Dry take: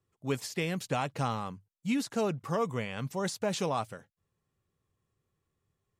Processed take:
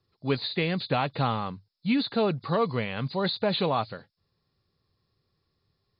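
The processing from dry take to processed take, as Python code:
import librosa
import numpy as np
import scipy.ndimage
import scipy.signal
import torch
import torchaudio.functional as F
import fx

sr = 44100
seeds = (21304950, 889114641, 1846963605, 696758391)

y = fx.freq_compress(x, sr, knee_hz=3400.0, ratio=4.0)
y = y * librosa.db_to_amplitude(5.0)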